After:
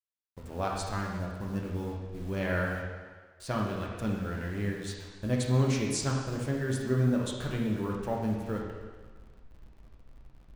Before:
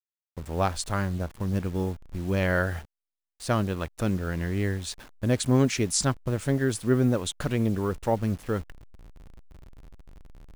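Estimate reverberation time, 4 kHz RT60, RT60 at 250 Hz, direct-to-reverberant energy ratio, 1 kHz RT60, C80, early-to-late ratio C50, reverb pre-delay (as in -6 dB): 1.5 s, 1.4 s, 1.4 s, -2.0 dB, 1.5 s, 3.5 dB, 1.5 dB, 6 ms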